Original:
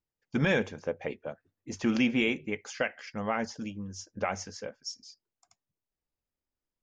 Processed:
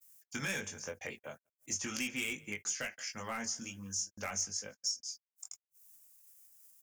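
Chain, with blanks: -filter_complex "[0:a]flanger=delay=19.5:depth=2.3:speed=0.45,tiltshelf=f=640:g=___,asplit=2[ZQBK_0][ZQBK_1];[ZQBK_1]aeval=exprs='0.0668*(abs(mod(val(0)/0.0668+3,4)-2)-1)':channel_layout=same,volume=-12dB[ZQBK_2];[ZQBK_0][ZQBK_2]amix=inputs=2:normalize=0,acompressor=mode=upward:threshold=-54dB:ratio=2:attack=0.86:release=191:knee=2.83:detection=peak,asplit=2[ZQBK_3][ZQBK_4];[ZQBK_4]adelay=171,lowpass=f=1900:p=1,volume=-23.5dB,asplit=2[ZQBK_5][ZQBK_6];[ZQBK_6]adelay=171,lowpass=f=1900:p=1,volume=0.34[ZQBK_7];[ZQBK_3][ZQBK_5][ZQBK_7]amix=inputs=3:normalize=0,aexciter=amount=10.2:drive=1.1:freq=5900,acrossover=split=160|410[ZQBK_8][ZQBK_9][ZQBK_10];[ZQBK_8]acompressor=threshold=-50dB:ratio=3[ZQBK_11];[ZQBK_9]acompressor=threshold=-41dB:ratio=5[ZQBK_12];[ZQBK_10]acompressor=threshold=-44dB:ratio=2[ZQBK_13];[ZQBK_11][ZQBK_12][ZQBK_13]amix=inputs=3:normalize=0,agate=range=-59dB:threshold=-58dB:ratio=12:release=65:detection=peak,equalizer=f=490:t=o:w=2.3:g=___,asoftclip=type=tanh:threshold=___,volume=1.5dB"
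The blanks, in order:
-8, -6, -23.5dB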